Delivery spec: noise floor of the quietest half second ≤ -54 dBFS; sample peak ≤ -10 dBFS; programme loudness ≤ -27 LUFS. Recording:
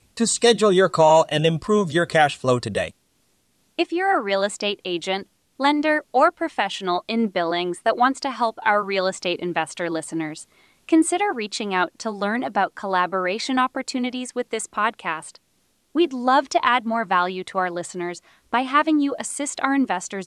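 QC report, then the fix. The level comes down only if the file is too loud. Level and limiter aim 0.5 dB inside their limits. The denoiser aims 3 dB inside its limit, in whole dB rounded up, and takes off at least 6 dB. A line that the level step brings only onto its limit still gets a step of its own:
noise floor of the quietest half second -66 dBFS: OK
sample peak -5.0 dBFS: fail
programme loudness -21.5 LUFS: fail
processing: gain -6 dB

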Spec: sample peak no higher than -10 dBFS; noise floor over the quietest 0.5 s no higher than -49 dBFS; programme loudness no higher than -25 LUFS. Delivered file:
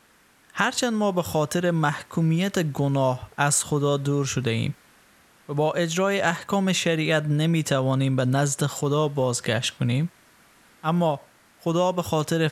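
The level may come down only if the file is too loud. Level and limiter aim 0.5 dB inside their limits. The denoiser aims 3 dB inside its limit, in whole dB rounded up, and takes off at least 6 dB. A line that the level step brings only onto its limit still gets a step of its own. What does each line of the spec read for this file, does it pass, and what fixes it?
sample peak -5.5 dBFS: fail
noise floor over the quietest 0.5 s -58 dBFS: OK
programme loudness -24.0 LUFS: fail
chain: gain -1.5 dB; limiter -10.5 dBFS

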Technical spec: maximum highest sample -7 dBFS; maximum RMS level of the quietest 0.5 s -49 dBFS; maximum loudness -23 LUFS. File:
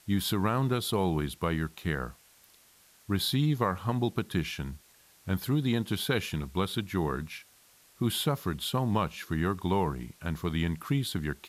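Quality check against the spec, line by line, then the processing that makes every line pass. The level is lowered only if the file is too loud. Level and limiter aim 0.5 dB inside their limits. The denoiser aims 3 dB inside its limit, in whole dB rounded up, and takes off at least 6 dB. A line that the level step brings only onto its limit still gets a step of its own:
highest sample -14.0 dBFS: OK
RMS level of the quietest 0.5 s -61 dBFS: OK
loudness -30.5 LUFS: OK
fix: none

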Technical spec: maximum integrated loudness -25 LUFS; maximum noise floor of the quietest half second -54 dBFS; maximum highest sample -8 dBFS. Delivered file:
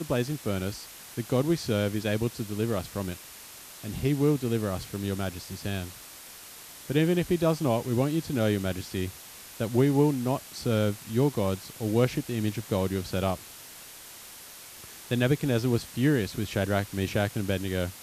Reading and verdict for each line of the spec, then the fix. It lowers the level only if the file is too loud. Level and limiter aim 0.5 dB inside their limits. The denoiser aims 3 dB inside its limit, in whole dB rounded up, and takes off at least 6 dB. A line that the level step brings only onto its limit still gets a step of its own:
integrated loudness -28.5 LUFS: OK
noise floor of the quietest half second -46 dBFS: fail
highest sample -11.5 dBFS: OK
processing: denoiser 11 dB, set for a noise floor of -46 dBFS

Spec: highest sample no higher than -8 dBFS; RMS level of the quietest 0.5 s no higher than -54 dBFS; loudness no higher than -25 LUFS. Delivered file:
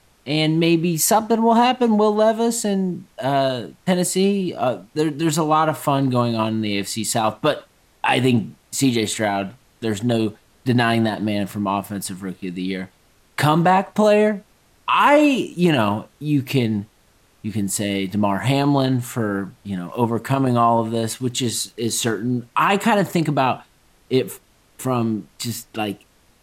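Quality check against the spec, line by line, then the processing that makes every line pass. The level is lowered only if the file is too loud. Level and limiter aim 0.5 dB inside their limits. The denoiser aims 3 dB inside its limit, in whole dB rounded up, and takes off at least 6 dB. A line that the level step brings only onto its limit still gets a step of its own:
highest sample -3.5 dBFS: fail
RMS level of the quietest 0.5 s -57 dBFS: OK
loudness -20.0 LUFS: fail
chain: gain -5.5 dB

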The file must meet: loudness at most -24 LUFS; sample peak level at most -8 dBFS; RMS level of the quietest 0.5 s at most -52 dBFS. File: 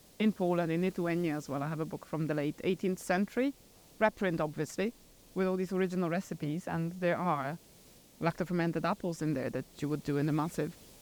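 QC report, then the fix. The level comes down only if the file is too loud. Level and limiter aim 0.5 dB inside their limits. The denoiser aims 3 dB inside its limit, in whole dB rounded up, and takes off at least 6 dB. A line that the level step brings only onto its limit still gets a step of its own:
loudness -33.5 LUFS: OK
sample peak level -14.0 dBFS: OK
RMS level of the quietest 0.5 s -58 dBFS: OK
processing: none

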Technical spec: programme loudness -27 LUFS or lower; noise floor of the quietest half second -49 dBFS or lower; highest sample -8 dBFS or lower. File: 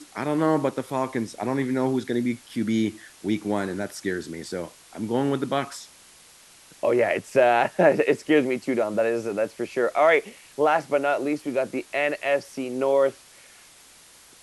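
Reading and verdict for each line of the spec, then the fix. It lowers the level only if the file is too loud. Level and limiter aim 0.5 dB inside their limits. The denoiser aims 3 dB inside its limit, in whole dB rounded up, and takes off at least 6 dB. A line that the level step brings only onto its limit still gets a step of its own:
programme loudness -24.5 LUFS: fail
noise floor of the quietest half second -52 dBFS: OK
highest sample -5.5 dBFS: fail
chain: gain -3 dB

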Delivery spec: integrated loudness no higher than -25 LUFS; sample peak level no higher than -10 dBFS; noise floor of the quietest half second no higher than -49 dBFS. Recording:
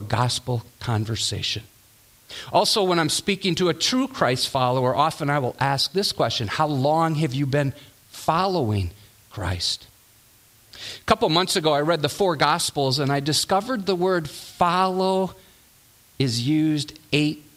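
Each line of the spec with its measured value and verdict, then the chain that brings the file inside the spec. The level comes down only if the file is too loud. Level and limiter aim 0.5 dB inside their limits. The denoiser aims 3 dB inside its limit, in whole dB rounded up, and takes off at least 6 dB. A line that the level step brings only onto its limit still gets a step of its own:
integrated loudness -22.5 LUFS: fail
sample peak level -4.5 dBFS: fail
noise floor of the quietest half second -55 dBFS: OK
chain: gain -3 dB; limiter -10.5 dBFS

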